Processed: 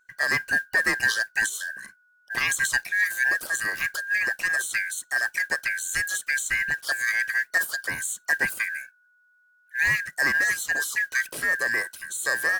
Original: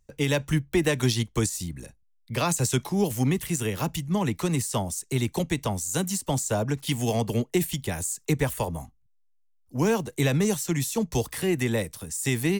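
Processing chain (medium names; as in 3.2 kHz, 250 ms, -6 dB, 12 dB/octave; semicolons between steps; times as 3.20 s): four frequency bands reordered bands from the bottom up 2143; modulation noise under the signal 27 dB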